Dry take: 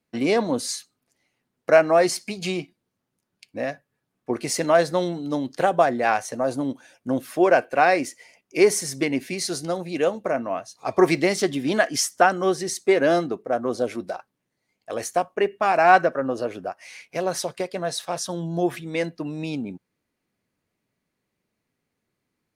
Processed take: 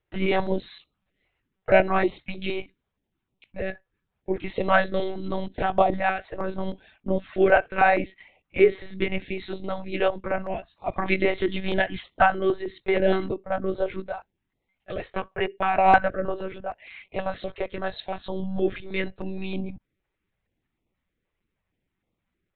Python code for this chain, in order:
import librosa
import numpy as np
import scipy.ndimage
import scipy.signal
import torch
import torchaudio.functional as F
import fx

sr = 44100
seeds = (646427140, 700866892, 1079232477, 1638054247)

y = fx.peak_eq(x, sr, hz=140.0, db=3.5, octaves=0.36)
y = fx.lpc_monotone(y, sr, seeds[0], pitch_hz=190.0, order=16)
y = fx.filter_held_notch(y, sr, hz=6.4, low_hz=220.0, high_hz=1600.0)